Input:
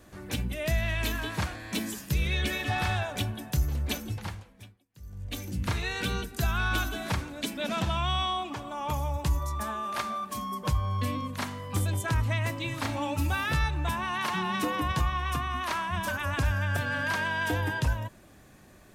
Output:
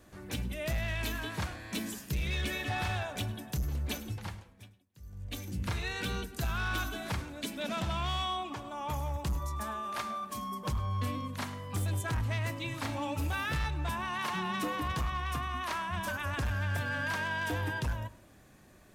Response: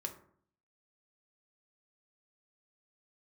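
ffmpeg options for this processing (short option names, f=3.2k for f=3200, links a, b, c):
-filter_complex "[0:a]asoftclip=type=hard:threshold=-24dB,asplit=2[a][b];[1:a]atrim=start_sample=2205,adelay=103[c];[b][c]afir=irnorm=-1:irlink=0,volume=-17dB[d];[a][d]amix=inputs=2:normalize=0,volume=-4dB"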